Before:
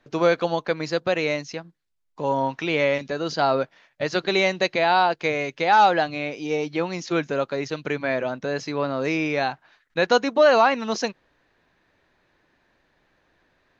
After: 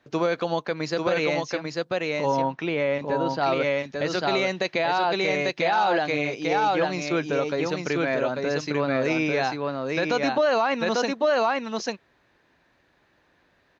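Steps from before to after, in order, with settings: HPF 44 Hz; on a send: echo 0.844 s -3.5 dB; on the sum: limiter -13.5 dBFS, peak gain reduction 9 dB; 2.42–3.41 LPF 2000 Hz 6 dB/oct

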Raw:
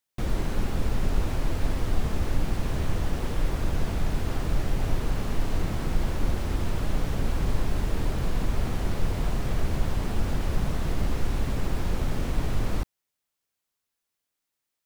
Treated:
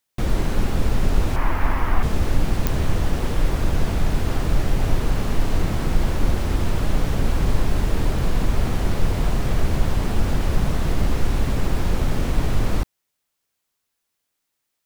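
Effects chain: 1.36–2.03 graphic EQ 125/500/1000/2000/4000/8000 Hz -6/-5/+10/+6/-7/-8 dB; pops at 2.67, -10 dBFS; gain +6 dB

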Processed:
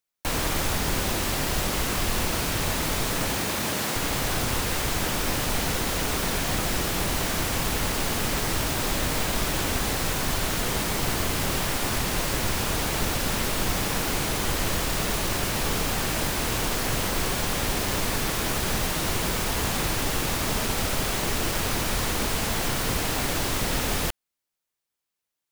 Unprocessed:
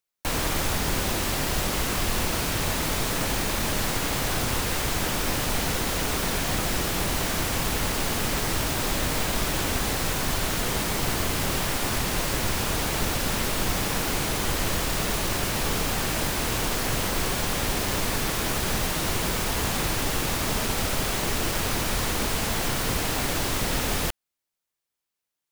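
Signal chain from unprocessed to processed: 3.3–3.95 HPF 62 Hz -> 170 Hz 12 dB/oct

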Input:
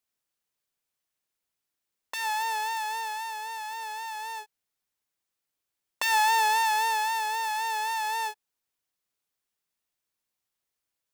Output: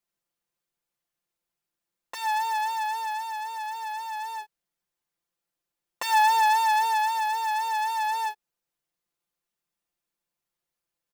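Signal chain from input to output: tilt shelf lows +3 dB, about 1400 Hz; comb 5.8 ms, depth 85%; gain -2.5 dB

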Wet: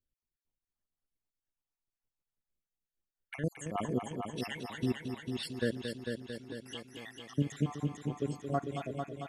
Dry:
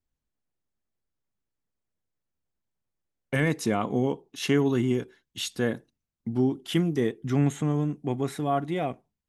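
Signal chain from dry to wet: random spectral dropouts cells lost 64%; chopper 3.2 Hz, depth 65%, duty 75%; multi-head echo 0.224 s, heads first and second, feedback 61%, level -8 dB; gain -5 dB

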